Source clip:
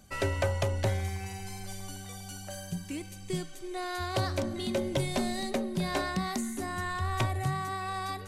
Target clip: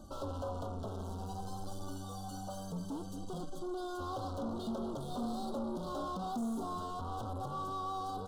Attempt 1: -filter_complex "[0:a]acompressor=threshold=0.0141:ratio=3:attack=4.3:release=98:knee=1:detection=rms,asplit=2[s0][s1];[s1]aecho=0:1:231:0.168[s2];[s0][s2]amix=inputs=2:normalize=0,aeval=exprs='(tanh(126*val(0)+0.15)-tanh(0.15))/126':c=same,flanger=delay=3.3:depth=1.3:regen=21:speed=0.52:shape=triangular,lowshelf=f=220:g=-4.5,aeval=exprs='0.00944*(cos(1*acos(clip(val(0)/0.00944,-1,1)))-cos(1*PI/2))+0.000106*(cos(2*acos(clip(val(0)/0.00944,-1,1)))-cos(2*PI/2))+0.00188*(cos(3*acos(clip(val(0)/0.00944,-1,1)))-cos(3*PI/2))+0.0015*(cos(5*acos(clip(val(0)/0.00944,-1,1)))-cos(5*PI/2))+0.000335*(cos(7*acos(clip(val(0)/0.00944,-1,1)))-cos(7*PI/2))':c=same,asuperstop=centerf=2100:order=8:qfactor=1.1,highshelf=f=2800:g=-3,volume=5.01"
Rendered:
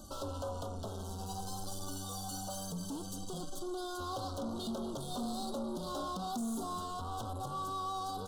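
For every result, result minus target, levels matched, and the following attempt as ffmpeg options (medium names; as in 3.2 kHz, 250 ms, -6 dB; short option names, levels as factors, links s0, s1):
4 kHz band +6.0 dB; compression: peak gain reduction +5.5 dB
-filter_complex "[0:a]acompressor=threshold=0.0141:ratio=3:attack=4.3:release=98:knee=1:detection=rms,asplit=2[s0][s1];[s1]aecho=0:1:231:0.168[s2];[s0][s2]amix=inputs=2:normalize=0,aeval=exprs='(tanh(126*val(0)+0.15)-tanh(0.15))/126':c=same,flanger=delay=3.3:depth=1.3:regen=21:speed=0.52:shape=triangular,lowshelf=f=220:g=-4.5,aeval=exprs='0.00944*(cos(1*acos(clip(val(0)/0.00944,-1,1)))-cos(1*PI/2))+0.000106*(cos(2*acos(clip(val(0)/0.00944,-1,1)))-cos(2*PI/2))+0.00188*(cos(3*acos(clip(val(0)/0.00944,-1,1)))-cos(3*PI/2))+0.0015*(cos(5*acos(clip(val(0)/0.00944,-1,1)))-cos(5*PI/2))+0.000335*(cos(7*acos(clip(val(0)/0.00944,-1,1)))-cos(7*PI/2))':c=same,asuperstop=centerf=2100:order=8:qfactor=1.1,highshelf=f=2800:g=-15,volume=5.01"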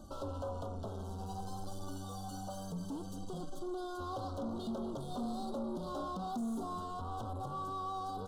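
compression: peak gain reduction +5.5 dB
-filter_complex "[0:a]acompressor=threshold=0.0355:ratio=3:attack=4.3:release=98:knee=1:detection=rms,asplit=2[s0][s1];[s1]aecho=0:1:231:0.168[s2];[s0][s2]amix=inputs=2:normalize=0,aeval=exprs='(tanh(126*val(0)+0.15)-tanh(0.15))/126':c=same,flanger=delay=3.3:depth=1.3:regen=21:speed=0.52:shape=triangular,lowshelf=f=220:g=-4.5,aeval=exprs='0.00944*(cos(1*acos(clip(val(0)/0.00944,-1,1)))-cos(1*PI/2))+0.000106*(cos(2*acos(clip(val(0)/0.00944,-1,1)))-cos(2*PI/2))+0.00188*(cos(3*acos(clip(val(0)/0.00944,-1,1)))-cos(3*PI/2))+0.0015*(cos(5*acos(clip(val(0)/0.00944,-1,1)))-cos(5*PI/2))+0.000335*(cos(7*acos(clip(val(0)/0.00944,-1,1)))-cos(7*PI/2))':c=same,asuperstop=centerf=2100:order=8:qfactor=1.1,highshelf=f=2800:g=-15,volume=5.01"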